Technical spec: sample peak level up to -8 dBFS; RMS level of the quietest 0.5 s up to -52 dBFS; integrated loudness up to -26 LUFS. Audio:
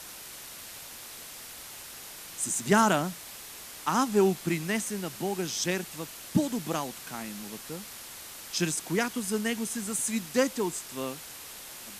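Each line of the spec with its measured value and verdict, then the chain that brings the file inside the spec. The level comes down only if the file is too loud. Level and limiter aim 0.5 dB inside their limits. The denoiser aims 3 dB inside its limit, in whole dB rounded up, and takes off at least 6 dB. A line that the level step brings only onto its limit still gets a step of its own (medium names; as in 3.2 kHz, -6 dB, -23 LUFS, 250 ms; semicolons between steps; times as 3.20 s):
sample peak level -8.5 dBFS: pass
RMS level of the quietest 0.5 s -44 dBFS: fail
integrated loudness -29.5 LUFS: pass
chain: noise reduction 11 dB, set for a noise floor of -44 dBFS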